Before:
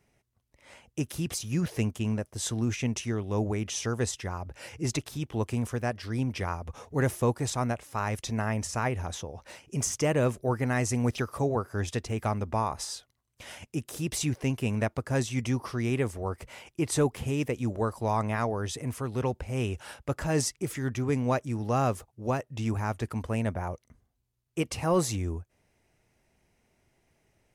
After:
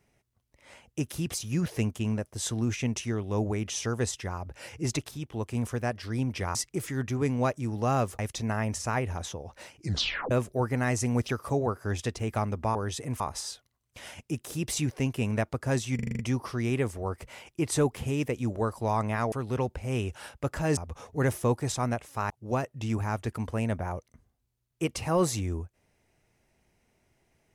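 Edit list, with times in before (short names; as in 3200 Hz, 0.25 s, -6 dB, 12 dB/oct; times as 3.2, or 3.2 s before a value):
5.11–5.55 gain -3.5 dB
6.55–8.08 swap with 20.42–22.06
9.66 tape stop 0.54 s
15.39 stutter 0.04 s, 7 plays
18.52–18.97 move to 12.64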